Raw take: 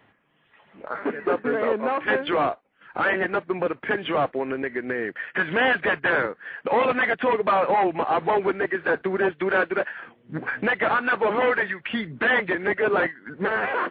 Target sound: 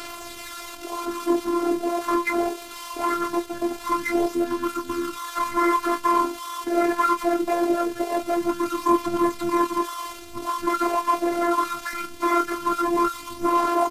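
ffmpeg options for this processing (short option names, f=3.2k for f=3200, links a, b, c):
-filter_complex "[0:a]aeval=exprs='val(0)+0.5*0.0224*sgn(val(0))':c=same,asplit=2[a][b];[b]aecho=0:1:15|27:0.299|0.335[c];[a][c]amix=inputs=2:normalize=0,aphaser=in_gain=1:out_gain=1:delay=3.2:decay=0.33:speed=0.22:type=sinusoidal,highshelf=f=2.4k:g=10,bandreject=f=2.7k:w=6,acrusher=bits=7:mode=log:mix=0:aa=0.000001,asetrate=29433,aresample=44100,atempo=1.49831,afftfilt=real='hypot(re,im)*cos(PI*b)':imag='0':win_size=512:overlap=0.75"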